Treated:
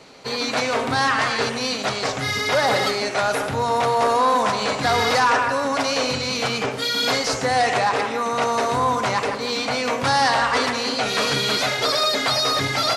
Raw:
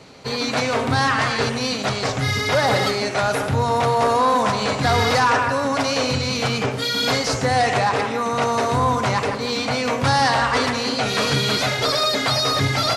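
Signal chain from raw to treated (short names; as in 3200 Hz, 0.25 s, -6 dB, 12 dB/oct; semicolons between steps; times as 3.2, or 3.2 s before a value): bell 93 Hz -10 dB 2.1 oct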